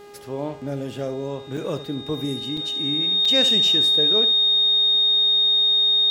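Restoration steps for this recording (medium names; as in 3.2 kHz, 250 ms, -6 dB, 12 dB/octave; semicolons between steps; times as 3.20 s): de-hum 408.9 Hz, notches 21; band-stop 3.7 kHz, Q 30; interpolate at 1.57/2.57/3.25 s, 4.5 ms; inverse comb 71 ms -13 dB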